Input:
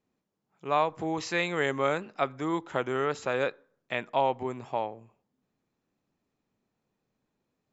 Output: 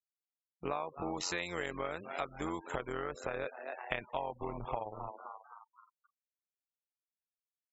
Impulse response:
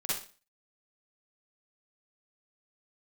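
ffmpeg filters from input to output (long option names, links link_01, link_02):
-filter_complex "[0:a]asettb=1/sr,asplit=3[link_01][link_02][link_03];[link_01]atrim=end=1.024[link_04];[link_02]atrim=start=1.02:end=3.04,asetpts=PTS-STARTPTS,afade=type=in:duration=0.004:curve=qsin,afade=type=out:start_time=2.016:duration=0.004:curve=qsin,highshelf=frequency=5100:gain=10.5[link_05];[link_03]atrim=start=3.036[link_06];[link_04][link_05]acrossfade=duration=0.004:curve1=hsin:curve2=qsin[link_07];[link_07][link_06]acrossfade=duration=0.004:curve1=qsin:curve2=hsin,asplit=6[link_08][link_09][link_10][link_11][link_12][link_13];[link_09]adelay=257,afreqshift=120,volume=-16dB[link_14];[link_10]adelay=514,afreqshift=240,volume=-21.8dB[link_15];[link_11]adelay=771,afreqshift=360,volume=-27.7dB[link_16];[link_12]adelay=1028,afreqshift=480,volume=-33.5dB[link_17];[link_13]adelay=1285,afreqshift=600,volume=-39.4dB[link_18];[link_08][link_14][link_15][link_16][link_17][link_18]amix=inputs=6:normalize=0,acompressor=threshold=-37dB:ratio=12,tremolo=f=90:d=0.75,afftfilt=real='re*gte(hypot(re,im),0.00224)':imag='im*gte(hypot(re,im),0.00224)':win_size=1024:overlap=0.75,asubboost=boost=5:cutoff=82,volume=7dB"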